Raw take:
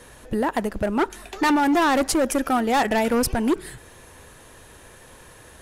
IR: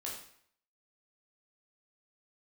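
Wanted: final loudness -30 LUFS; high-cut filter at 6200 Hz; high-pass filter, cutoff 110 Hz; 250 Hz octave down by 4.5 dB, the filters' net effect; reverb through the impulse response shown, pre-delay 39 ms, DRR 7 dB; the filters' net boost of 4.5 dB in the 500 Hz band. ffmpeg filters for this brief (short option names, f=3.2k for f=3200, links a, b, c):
-filter_complex "[0:a]highpass=110,lowpass=6.2k,equalizer=f=250:t=o:g=-8,equalizer=f=500:t=o:g=7.5,asplit=2[a][b];[1:a]atrim=start_sample=2205,adelay=39[c];[b][c]afir=irnorm=-1:irlink=0,volume=-7dB[d];[a][d]amix=inputs=2:normalize=0,volume=-9.5dB"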